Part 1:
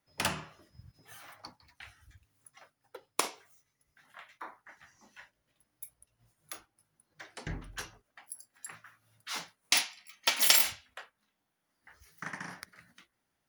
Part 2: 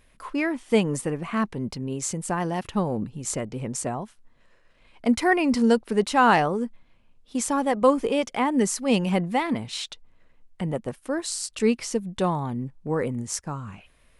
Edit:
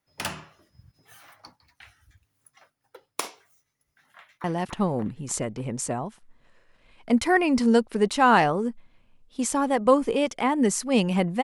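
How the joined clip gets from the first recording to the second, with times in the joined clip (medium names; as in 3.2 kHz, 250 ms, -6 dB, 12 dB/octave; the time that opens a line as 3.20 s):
part 1
4.14–4.44 s: echo throw 290 ms, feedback 55%, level -1 dB
4.44 s: go over to part 2 from 2.40 s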